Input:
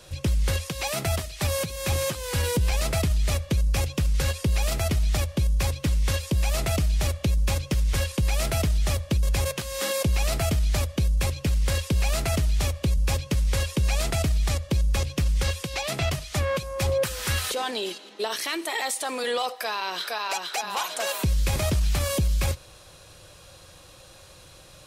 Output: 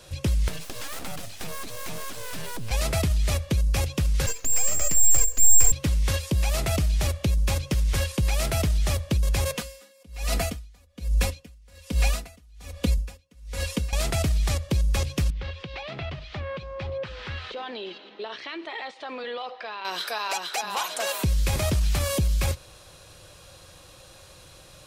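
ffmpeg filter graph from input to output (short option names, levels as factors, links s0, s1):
-filter_complex "[0:a]asettb=1/sr,asplit=3[s0][s1][s2];[s0]atrim=end=0.484[s3];[s1]atrim=start=0.48:end=2.71,asetpts=PTS-STARTPTS,afade=t=in:d=0.004:c=qsin,afade=t=out:st=2.226:d=0.004:c=qsin,acrusher=bits=8:mode=log:mix=0:aa=0.000001,acompressor=threshold=0.0398:ratio=5:attack=3.2:release=140:knee=1:detection=peak,aeval=exprs='abs(val(0))':c=same[s4];[s2]atrim=start=2.706[s5];[s3][s4]acrossfade=d=0.004:c1=hsin:c2=qsin[s6];[s6][s5]acrossfade=d=0.004:c1=qsin:c2=hsin,asettb=1/sr,asplit=3[s7][s8][s9];[s7]atrim=end=4.264[s10];[s8]atrim=start=4.26:end=5.72,asetpts=PTS-STARTPTS,afade=t=in:d=0.004:c=qsin,afade=t=out:st=1.456:d=0.004:c=qsin,asubboost=boost=8:cutoff=150,lowpass=f=3200:t=q:w=0.5098,lowpass=f=3200:t=q:w=0.6013,lowpass=f=3200:t=q:w=0.9,lowpass=f=3200:t=q:w=2.563,afreqshift=-3800,aeval=exprs='abs(val(0))':c=same[s11];[s9]atrim=start=5.716[s12];[s10][s11]acrossfade=d=0.004:c1=hsin:c2=qsin[s13];[s13][s12]acrossfade=d=0.004:c1=qsin:c2=hsin,asettb=1/sr,asplit=3[s14][s15][s16];[s14]atrim=end=9.544[s17];[s15]atrim=start=9.54:end=13.93,asetpts=PTS-STARTPTS,afade=t=in:d=0.004:c=qsin,afade=t=out:st=4.386:d=0.004:c=qsin,aecho=1:1:4.1:0.79,atrim=end_sample=193599,aeval=exprs='val(0)*pow(10,-33*(0.5-0.5*cos(2*PI*1.2*n/s))/20)':c=same[s18];[s16]atrim=start=13.926[s19];[s17][s18]acrossfade=d=0.004:c1=hsin:c2=qsin[s20];[s20][s19]acrossfade=d=0.004:c1=qsin:c2=hsin,asettb=1/sr,asplit=3[s21][s22][s23];[s21]atrim=end=15.304[s24];[s22]atrim=start=15.3:end=19.85,asetpts=PTS-STARTPTS,afade=t=in:d=0.004:c=qsin,afade=t=out:st=4.546:d=0.004:c=qsin,acompressor=threshold=0.0178:ratio=2:attack=3.2:release=140:knee=1:detection=peak,lowpass=f=3800:w=0.5412,lowpass=f=3800:w=1.3066[s25];[s23]atrim=start=19.846[s26];[s24][s25]acrossfade=d=0.004:c1=hsin:c2=qsin[s27];[s27][s26]acrossfade=d=0.004:c1=qsin:c2=hsin"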